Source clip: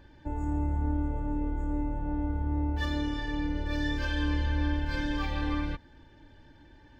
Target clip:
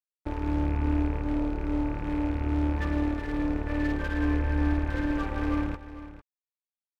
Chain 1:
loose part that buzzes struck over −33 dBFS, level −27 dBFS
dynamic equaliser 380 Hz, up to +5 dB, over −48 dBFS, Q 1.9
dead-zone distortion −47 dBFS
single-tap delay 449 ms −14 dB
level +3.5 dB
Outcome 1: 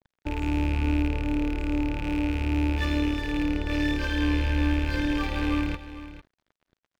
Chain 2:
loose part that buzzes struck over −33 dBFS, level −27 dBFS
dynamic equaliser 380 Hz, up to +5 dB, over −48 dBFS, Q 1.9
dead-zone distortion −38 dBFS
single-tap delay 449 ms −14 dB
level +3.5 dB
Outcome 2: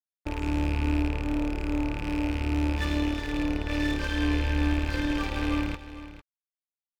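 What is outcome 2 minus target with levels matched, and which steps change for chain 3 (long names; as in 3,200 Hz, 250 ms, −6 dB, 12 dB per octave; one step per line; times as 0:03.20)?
2,000 Hz band +3.0 dB
add after dynamic equaliser: low-pass filter 1,800 Hz 24 dB per octave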